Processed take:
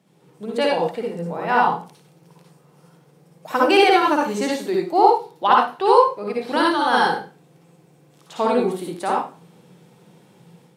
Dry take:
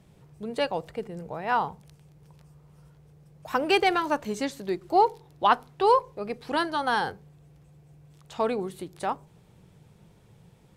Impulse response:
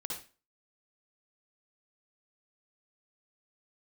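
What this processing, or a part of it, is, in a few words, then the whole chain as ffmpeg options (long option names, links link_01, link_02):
far laptop microphone: -filter_complex "[1:a]atrim=start_sample=2205[link_01];[0:a][link_01]afir=irnorm=-1:irlink=0,highpass=frequency=170:width=0.5412,highpass=frequency=170:width=1.3066,dynaudnorm=framelen=190:gausssize=3:maxgain=7dB,volume=1dB"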